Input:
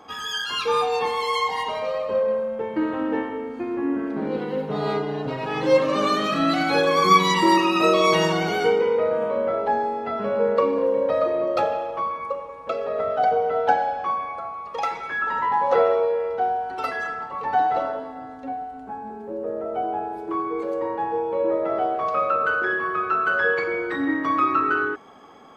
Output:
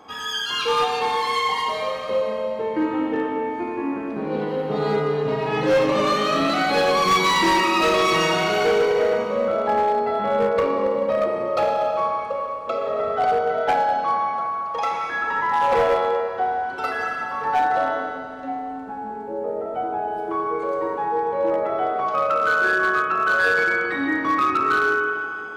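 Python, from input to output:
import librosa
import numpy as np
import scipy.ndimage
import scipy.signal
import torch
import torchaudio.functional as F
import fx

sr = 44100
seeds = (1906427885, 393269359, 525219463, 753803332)

y = fx.rev_schroeder(x, sr, rt60_s=2.5, comb_ms=26, drr_db=1.0)
y = np.clip(10.0 ** (14.0 / 20.0) * y, -1.0, 1.0) / 10.0 ** (14.0 / 20.0)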